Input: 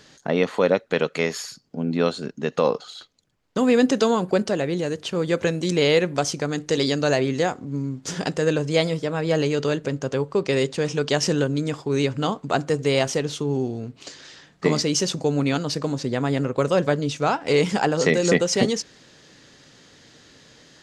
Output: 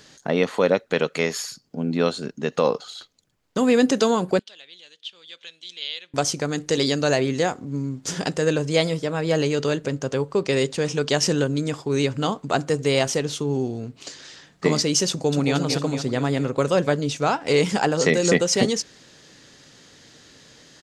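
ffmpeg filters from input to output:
ffmpeg -i in.wav -filter_complex "[0:a]asettb=1/sr,asplit=3[link_01][link_02][link_03];[link_01]atrim=end=4.394[link_04];[link_02]atrim=start=4.39:end=6.14,asetpts=PTS-STARTPTS,afade=type=in:duration=0.004:curve=qsin,afade=type=out:start_time=1.746:duration=0.004:curve=qsin,bandpass=frequency=3400:width_type=q:width=5.9[link_05];[link_03]atrim=start=6.136[link_06];[link_04][link_05]acrossfade=duration=0.004:curve1=hsin:curve2=qsin[link_07];[link_07][link_06]acrossfade=duration=0.004:curve1=qsin:curve2=hsin,asplit=2[link_08][link_09];[link_09]afade=type=in:start_time=15.09:duration=0.01,afade=type=out:start_time=15.55:duration=0.01,aecho=0:1:230|460|690|920|1150|1380|1610|1840:0.501187|0.300712|0.180427|0.108256|0.0649539|0.0389723|0.0233834|0.01403[link_10];[link_08][link_10]amix=inputs=2:normalize=0,highshelf=frequency=6400:gain=6" out.wav

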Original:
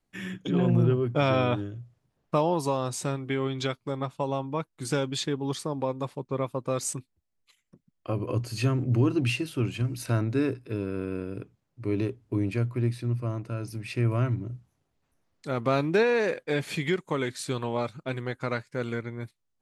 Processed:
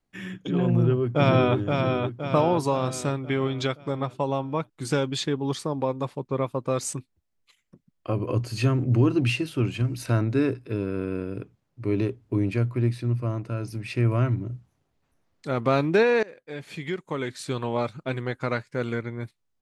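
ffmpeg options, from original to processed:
ffmpeg -i in.wav -filter_complex "[0:a]asplit=2[link_01][link_02];[link_02]afade=type=in:start_time=0.67:duration=0.01,afade=type=out:start_time=1.57:duration=0.01,aecho=0:1:520|1040|1560|2080|2600|3120:0.595662|0.297831|0.148916|0.0744578|0.0372289|0.0186144[link_03];[link_01][link_03]amix=inputs=2:normalize=0,asplit=2[link_04][link_05];[link_04]atrim=end=16.23,asetpts=PTS-STARTPTS,afade=type=out:start_time=16.226:duration=0.004:curve=hsin:silence=0.0707946[link_06];[link_05]atrim=start=16.23,asetpts=PTS-STARTPTS,afade=type=in:duration=1.59:silence=0.0707946[link_07];[link_06][link_07]concat=n=2:v=0:a=1,highshelf=frequency=7200:gain=-6,dynaudnorm=framelen=210:gausssize=9:maxgain=3dB" out.wav

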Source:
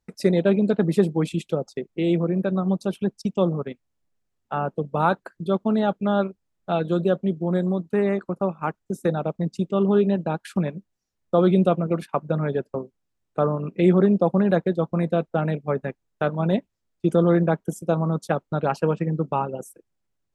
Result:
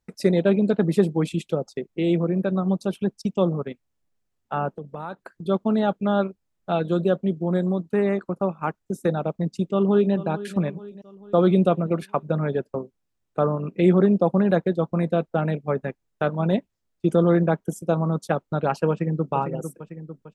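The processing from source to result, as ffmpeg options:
ffmpeg -i in.wav -filter_complex "[0:a]asettb=1/sr,asplit=3[link_01][link_02][link_03];[link_01]atrim=end=4.714[link_04];[link_02]atrim=start=4.71:end=5.45,asetpts=PTS-STARTPTS,afade=type=in:duration=0.004:curve=qsin,afade=type=out:start_time=0.736:duration=0.004:curve=qsin,acompressor=threshold=-33dB:ratio=3:attack=3.2:release=140:knee=1:detection=peak[link_05];[link_03]atrim=start=5.446[link_06];[link_04][link_05]acrossfade=duration=0.004:curve1=hsin:curve2=qsin[link_07];[link_07][link_06]acrossfade=duration=0.004:curve1=qsin:curve2=hsin,asplit=2[link_08][link_09];[link_09]afade=type=in:start_time=9.56:duration=0.01,afade=type=out:start_time=10.13:duration=0.01,aecho=0:1:440|880|1320|1760|2200:0.16788|0.0923342|0.0507838|0.0279311|0.0153621[link_10];[link_08][link_10]amix=inputs=2:normalize=0,asplit=2[link_11][link_12];[link_12]afade=type=in:start_time=18.9:duration=0.01,afade=type=out:start_time=19.31:duration=0.01,aecho=0:1:450|900|1350|1800|2250|2700|3150:0.398107|0.218959|0.120427|0.0662351|0.0364293|0.0200361|0.0110199[link_13];[link_11][link_13]amix=inputs=2:normalize=0" out.wav

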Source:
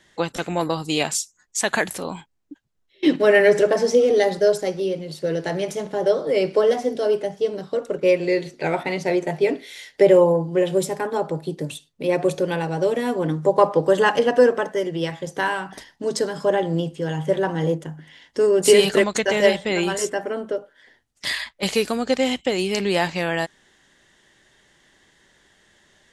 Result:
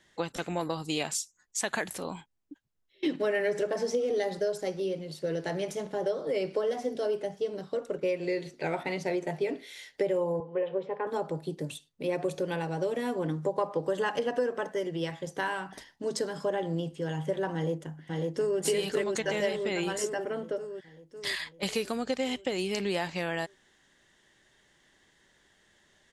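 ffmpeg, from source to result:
ffmpeg -i in.wav -filter_complex "[0:a]asettb=1/sr,asplit=3[link_01][link_02][link_03];[link_01]atrim=end=10.404[link_04];[link_02]atrim=start=10.4:end=11.07,asetpts=PTS-STARTPTS,afade=type=in:duration=0.004:curve=qsin,afade=type=out:start_time=0.666:duration=0.004:curve=qsin,highpass=310,equalizer=frequency=330:width_type=q:width=4:gain=-9,equalizer=frequency=470:width_type=q:width=4:gain=9,equalizer=frequency=690:width_type=q:width=4:gain=-4,equalizer=frequency=1000:width_type=q:width=4:gain=4,equalizer=frequency=1500:width_type=q:width=4:gain=-3,equalizer=frequency=2100:width_type=q:width=4:gain=-3,lowpass=frequency=2600:width=0.5412,lowpass=frequency=2600:width=1.3066[link_05];[link_03]atrim=start=11.066[link_06];[link_04][link_05]acrossfade=duration=0.004:curve1=hsin:curve2=qsin[link_07];[link_07][link_06]acrossfade=duration=0.004:curve1=qsin:curve2=hsin,asplit=2[link_08][link_09];[link_09]afade=type=in:start_time=17.54:duration=0.01,afade=type=out:start_time=18.6:duration=0.01,aecho=0:1:550|1100|1650|2200|2750|3300|3850|4400|4950:0.749894|0.449937|0.269962|0.161977|0.0971863|0.0583118|0.0349871|0.0209922|0.0125953[link_10];[link_08][link_10]amix=inputs=2:normalize=0,acompressor=threshold=-19dB:ratio=4,volume=-7dB" out.wav

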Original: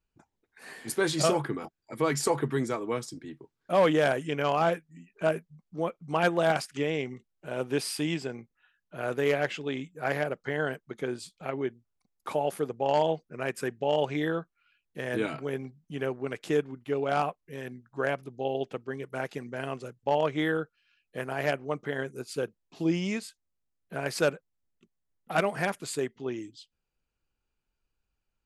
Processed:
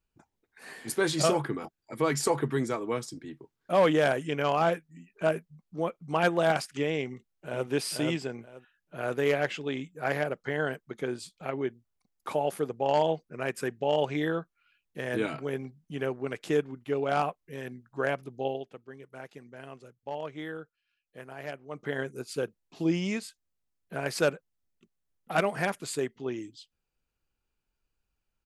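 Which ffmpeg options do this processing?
ffmpeg -i in.wav -filter_complex "[0:a]asplit=2[link_01][link_02];[link_02]afade=type=in:start_time=7.05:duration=0.01,afade=type=out:start_time=7.68:duration=0.01,aecho=0:1:480|960|1440:0.707946|0.141589|0.0283178[link_03];[link_01][link_03]amix=inputs=2:normalize=0,asplit=3[link_04][link_05][link_06];[link_04]atrim=end=18.64,asetpts=PTS-STARTPTS,afade=type=out:start_time=18.47:duration=0.17:silence=0.298538[link_07];[link_05]atrim=start=18.64:end=21.7,asetpts=PTS-STARTPTS,volume=-10.5dB[link_08];[link_06]atrim=start=21.7,asetpts=PTS-STARTPTS,afade=type=in:duration=0.17:silence=0.298538[link_09];[link_07][link_08][link_09]concat=n=3:v=0:a=1" out.wav

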